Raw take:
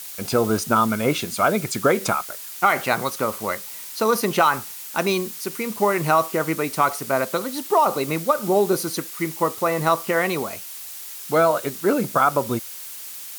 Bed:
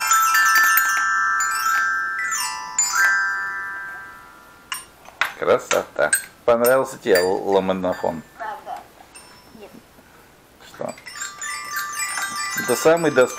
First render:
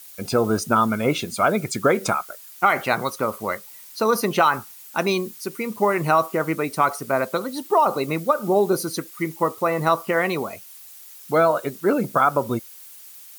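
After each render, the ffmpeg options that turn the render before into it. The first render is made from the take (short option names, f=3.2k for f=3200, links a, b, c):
-af "afftdn=nr=10:nf=-36"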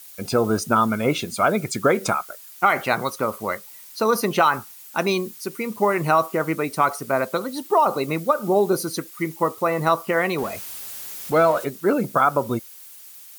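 -filter_complex "[0:a]asettb=1/sr,asplit=3[a][b][c];[a]atrim=end=10.384[d];[b]atrim=start=10.38:end=11.65,asetpts=PTS-STARTPTS,afade=t=in:d=0.004:c=qsin,afade=t=out:st=1.266:d=0.004:c=qsin,aeval=exprs='val(0)+0.5*0.0237*sgn(val(0))':c=same[e];[c]atrim=start=11.646[f];[d][e]acrossfade=d=0.004:c1=hsin:c2=qsin[g];[g][f]acrossfade=d=0.004:c1=qsin:c2=hsin"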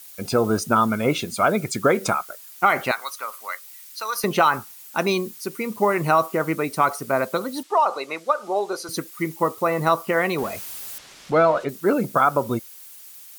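-filter_complex "[0:a]asettb=1/sr,asplit=3[a][b][c];[a]atrim=end=2.914[d];[b]atrim=start=2.91:end=4.24,asetpts=PTS-STARTPTS,afade=t=in:d=0.004:c=qsin,afade=t=out:st=1.326:d=0.004:c=qsin,highpass=1.3k[e];[c]atrim=start=4.236[f];[d][e]acrossfade=d=0.004:c1=hsin:c2=qsin[g];[g][f]acrossfade=d=0.004:c1=qsin:c2=hsin,asettb=1/sr,asplit=3[h][i][j];[h]atrim=end=7.634[k];[i]atrim=start=7.63:end=8.89,asetpts=PTS-STARTPTS,afade=t=in:d=0.004:c=qsin,afade=t=out:st=1.256:d=0.004:c=qsin,highpass=590,lowpass=6.9k[l];[j]atrim=start=8.886[m];[k][l]acrossfade=d=0.004:c1=hsin:c2=qsin[n];[n][m]acrossfade=d=0.004:c1=qsin:c2=hsin,asettb=1/sr,asplit=3[o][p][q];[o]atrim=end=10.984[r];[p]atrim=start=10.98:end=11.69,asetpts=PTS-STARTPTS,afade=t=in:d=0.004:c=qsin,afade=t=out:st=0.706:d=0.004:c=qsin,lowpass=4.8k[s];[q]atrim=start=11.686[t];[r][s]acrossfade=d=0.004:c1=hsin:c2=qsin[u];[u][t]acrossfade=d=0.004:c1=qsin:c2=hsin"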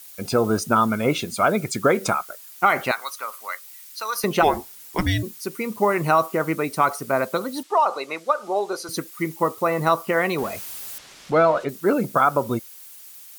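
-filter_complex "[0:a]asplit=3[a][b][c];[a]afade=t=out:st=4.42:d=0.02[d];[b]afreqshift=-480,afade=t=in:st=4.42:d=0.02,afade=t=out:st=5.22:d=0.02[e];[c]afade=t=in:st=5.22:d=0.02[f];[d][e][f]amix=inputs=3:normalize=0"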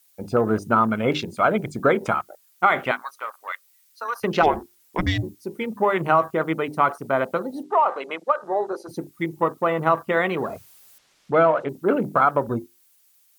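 -af "bandreject=f=50:t=h:w=6,bandreject=f=100:t=h:w=6,bandreject=f=150:t=h:w=6,bandreject=f=200:t=h:w=6,bandreject=f=250:t=h:w=6,bandreject=f=300:t=h:w=6,bandreject=f=350:t=h:w=6,bandreject=f=400:t=h:w=6,afwtdn=0.0224"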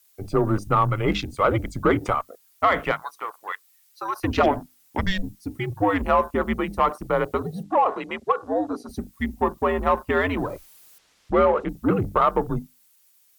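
-af "afreqshift=-99,asoftclip=type=tanh:threshold=-7.5dB"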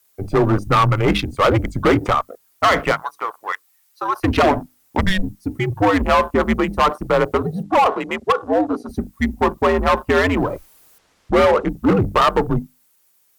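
-filter_complex "[0:a]asplit=2[a][b];[b]adynamicsmooth=sensitivity=5.5:basefreq=2k,volume=2.5dB[c];[a][c]amix=inputs=2:normalize=0,asoftclip=type=hard:threshold=-10dB"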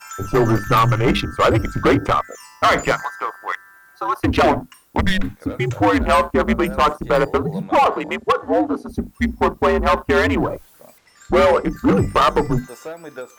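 -filter_complex "[1:a]volume=-17.5dB[a];[0:a][a]amix=inputs=2:normalize=0"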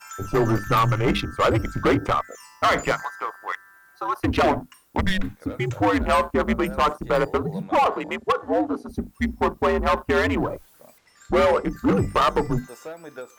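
-af "volume=-4.5dB"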